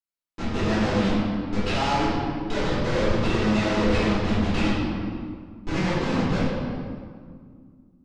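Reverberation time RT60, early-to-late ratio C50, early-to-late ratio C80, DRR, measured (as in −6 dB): 2.0 s, −2.5 dB, 0.0 dB, −12.0 dB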